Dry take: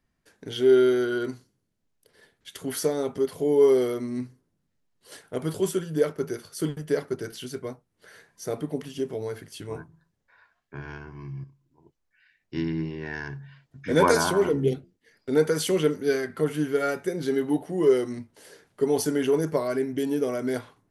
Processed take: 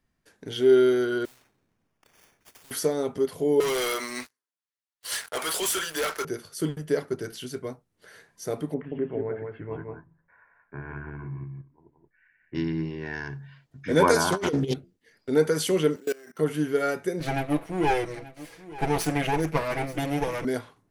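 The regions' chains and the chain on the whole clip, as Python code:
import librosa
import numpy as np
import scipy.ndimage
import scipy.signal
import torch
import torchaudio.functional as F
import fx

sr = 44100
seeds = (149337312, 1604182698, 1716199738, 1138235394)

y = fx.chain(x, sr, fx.sample_hold(seeds[0], rate_hz=4000.0, jitter_pct=0),
    fx.clip_hard(threshold_db=-35.0),
    fx.spectral_comp(ratio=4.0), at=(1.25, 2.71))
y = fx.chain(y, sr, fx.highpass(hz=1200.0, slope=12),
    fx.leveller(passes=5), at=(3.6, 6.25))
y = fx.chain(y, sr, fx.steep_lowpass(hz=2200.0, slope=36),
    fx.echo_single(ms=176, db=-4.0), at=(8.74, 12.55))
y = fx.chain(y, sr, fx.peak_eq(hz=4900.0, db=13.5, octaves=1.8),
    fx.over_compress(threshold_db=-25.0, ratio=-0.5),
    fx.doppler_dist(depth_ms=0.19), at=(14.32, 14.74))
y = fx.chain(y, sr, fx.highpass(hz=290.0, slope=12),
    fx.level_steps(step_db=24),
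    fx.sample_hold(seeds[1], rate_hz=7400.0, jitter_pct=0), at=(15.96, 16.39))
y = fx.chain(y, sr, fx.lower_of_two(delay_ms=6.1),
    fx.peak_eq(hz=2300.0, db=8.5, octaves=0.61),
    fx.echo_single(ms=883, db=-17.5), at=(17.2, 20.45))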